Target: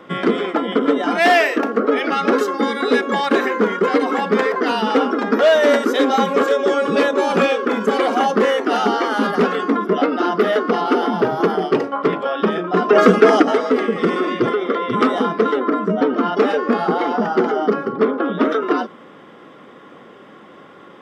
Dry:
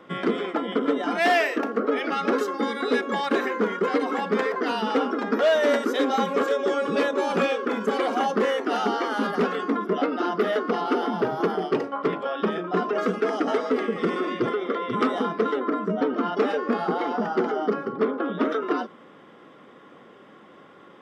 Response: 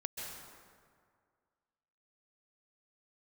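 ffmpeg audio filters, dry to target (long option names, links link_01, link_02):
-filter_complex "[0:a]asplit=3[link_01][link_02][link_03];[link_01]afade=type=out:start_time=12.89:duration=0.02[link_04];[link_02]acontrast=81,afade=type=in:start_time=12.89:duration=0.02,afade=type=out:start_time=13.41:duration=0.02[link_05];[link_03]afade=type=in:start_time=13.41:duration=0.02[link_06];[link_04][link_05][link_06]amix=inputs=3:normalize=0,volume=7dB"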